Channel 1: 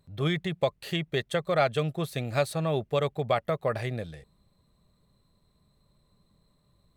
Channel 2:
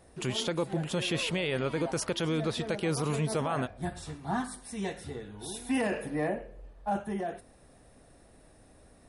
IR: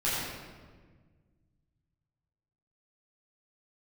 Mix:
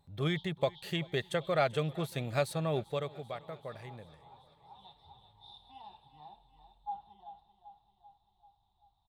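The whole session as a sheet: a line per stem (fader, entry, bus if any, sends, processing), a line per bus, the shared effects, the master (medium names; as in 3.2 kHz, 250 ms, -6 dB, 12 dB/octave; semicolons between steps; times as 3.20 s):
2.80 s -4.5 dB -> 3.29 s -15.5 dB, 0.00 s, no send, echo send -22.5 dB, none
-18.0 dB, 0.00 s, no send, echo send -10.5 dB, FFT filter 120 Hz 0 dB, 240 Hz -22 dB, 360 Hz -19 dB, 570 Hz -27 dB, 830 Hz +14 dB, 1.7 kHz -25 dB, 2.5 kHz -15 dB, 3.6 kHz +13 dB, 6.5 kHz -27 dB; auto duck -18 dB, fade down 0.85 s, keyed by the first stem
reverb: none
echo: feedback delay 389 ms, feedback 58%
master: none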